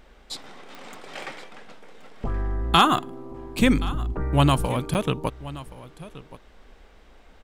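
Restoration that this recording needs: de-click; interpolate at 4.94, 9.1 ms; inverse comb 1.075 s -17.5 dB

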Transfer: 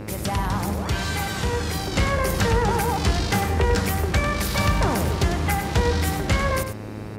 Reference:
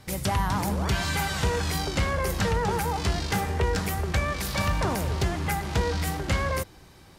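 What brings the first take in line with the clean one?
de-hum 106 Hz, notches 26; noise print and reduce 6 dB; inverse comb 98 ms -9 dB; gain correction -4 dB, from 1.92

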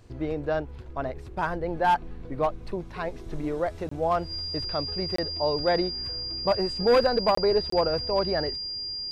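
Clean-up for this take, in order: notch 4800 Hz, Q 30; interpolate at 3.89/5.16/7.35/7.7, 24 ms

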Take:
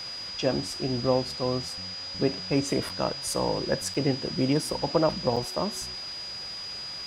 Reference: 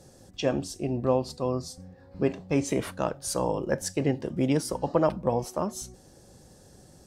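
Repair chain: notch 4900 Hz, Q 30; interpolate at 2.89/3.94/5.36, 5.7 ms; noise print and reduce 16 dB

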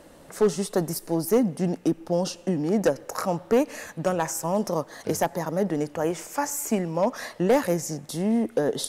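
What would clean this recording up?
clip repair -13.5 dBFS

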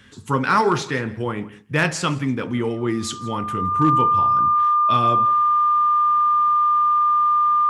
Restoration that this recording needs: clip repair -8 dBFS; notch 1200 Hz, Q 30; inverse comb 0.168 s -20.5 dB

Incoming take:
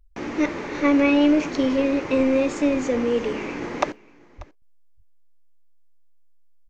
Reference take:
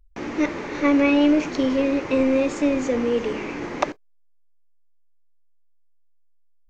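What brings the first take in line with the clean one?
4.37–4.49 HPF 140 Hz 24 dB/oct; inverse comb 0.589 s -22.5 dB; 4.62 gain correction -5 dB

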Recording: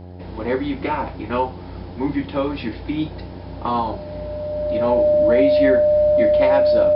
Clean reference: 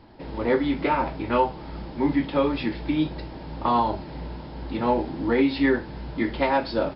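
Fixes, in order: de-hum 90 Hz, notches 9; notch 600 Hz, Q 30

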